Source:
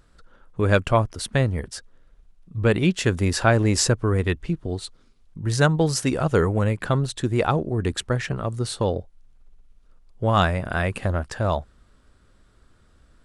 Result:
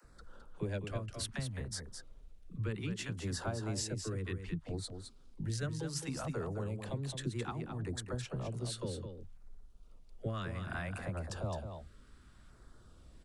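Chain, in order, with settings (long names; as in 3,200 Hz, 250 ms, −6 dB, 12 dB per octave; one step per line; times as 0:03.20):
downward compressor 12 to 1, threshold −33 dBFS, peak gain reduction 21 dB
auto-filter notch saw down 0.64 Hz 360–3,500 Hz
all-pass dispersion lows, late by 48 ms, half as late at 320 Hz
on a send: single-tap delay 213 ms −7.5 dB
on the sum: level −1.5 dB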